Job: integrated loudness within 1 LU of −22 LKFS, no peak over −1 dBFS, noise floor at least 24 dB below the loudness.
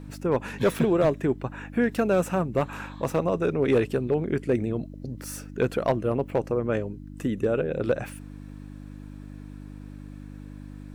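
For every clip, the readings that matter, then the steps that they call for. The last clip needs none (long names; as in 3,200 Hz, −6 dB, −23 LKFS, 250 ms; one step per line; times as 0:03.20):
share of clipped samples 0.3%; peaks flattened at −14.5 dBFS; mains hum 50 Hz; hum harmonics up to 300 Hz; level of the hum −38 dBFS; integrated loudness −26.5 LKFS; sample peak −14.5 dBFS; target loudness −22.0 LKFS
→ clipped peaks rebuilt −14.5 dBFS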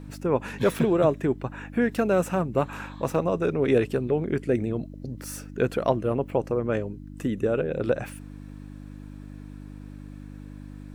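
share of clipped samples 0.0%; mains hum 50 Hz; hum harmonics up to 300 Hz; level of the hum −38 dBFS
→ hum removal 50 Hz, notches 6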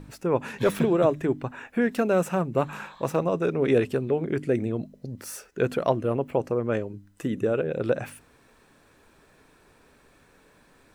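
mains hum none found; integrated loudness −26.5 LKFS; sample peak −9.0 dBFS; target loudness −22.0 LKFS
→ level +4.5 dB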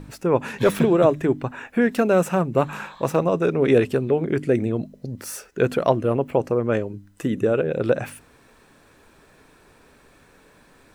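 integrated loudness −22.0 LKFS; sample peak −4.5 dBFS; background noise floor −55 dBFS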